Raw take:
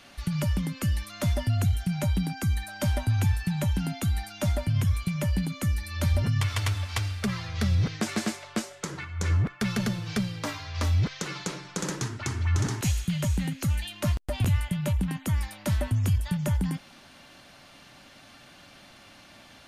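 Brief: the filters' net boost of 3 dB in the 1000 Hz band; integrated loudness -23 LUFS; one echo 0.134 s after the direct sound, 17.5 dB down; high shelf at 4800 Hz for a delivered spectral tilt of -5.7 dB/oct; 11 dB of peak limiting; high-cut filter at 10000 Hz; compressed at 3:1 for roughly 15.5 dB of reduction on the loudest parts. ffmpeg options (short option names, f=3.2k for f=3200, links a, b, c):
-af "lowpass=10k,equalizer=f=1k:t=o:g=4,highshelf=f=4.8k:g=-4,acompressor=threshold=-42dB:ratio=3,alimiter=level_in=9.5dB:limit=-24dB:level=0:latency=1,volume=-9.5dB,aecho=1:1:134:0.133,volume=20.5dB"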